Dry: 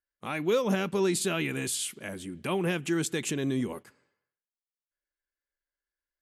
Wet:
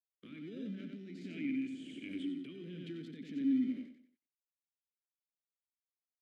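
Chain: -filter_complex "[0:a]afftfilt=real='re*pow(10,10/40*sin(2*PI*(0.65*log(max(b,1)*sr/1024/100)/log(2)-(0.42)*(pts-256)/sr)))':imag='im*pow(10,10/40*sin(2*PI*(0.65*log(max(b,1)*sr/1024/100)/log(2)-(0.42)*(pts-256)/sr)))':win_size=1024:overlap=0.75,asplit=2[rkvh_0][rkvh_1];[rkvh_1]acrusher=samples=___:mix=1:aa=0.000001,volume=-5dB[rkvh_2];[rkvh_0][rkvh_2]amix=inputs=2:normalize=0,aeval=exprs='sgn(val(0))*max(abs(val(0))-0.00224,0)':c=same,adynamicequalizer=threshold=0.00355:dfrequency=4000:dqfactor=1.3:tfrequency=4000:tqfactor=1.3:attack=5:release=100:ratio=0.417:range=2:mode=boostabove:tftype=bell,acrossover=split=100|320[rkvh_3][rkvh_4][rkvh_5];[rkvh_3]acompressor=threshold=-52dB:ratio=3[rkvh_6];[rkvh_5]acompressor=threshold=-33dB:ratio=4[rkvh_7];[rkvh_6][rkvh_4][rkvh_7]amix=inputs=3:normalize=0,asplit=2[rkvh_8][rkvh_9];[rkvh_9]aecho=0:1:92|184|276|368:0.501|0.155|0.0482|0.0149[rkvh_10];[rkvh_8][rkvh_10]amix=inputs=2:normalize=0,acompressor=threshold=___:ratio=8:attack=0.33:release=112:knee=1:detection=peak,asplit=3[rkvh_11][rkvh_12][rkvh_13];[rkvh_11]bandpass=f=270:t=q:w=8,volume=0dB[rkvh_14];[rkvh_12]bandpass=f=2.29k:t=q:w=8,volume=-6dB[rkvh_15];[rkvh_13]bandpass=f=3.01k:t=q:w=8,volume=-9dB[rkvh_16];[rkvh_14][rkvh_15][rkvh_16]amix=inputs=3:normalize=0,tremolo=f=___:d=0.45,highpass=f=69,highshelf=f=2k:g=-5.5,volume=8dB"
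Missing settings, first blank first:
40, -32dB, 1.4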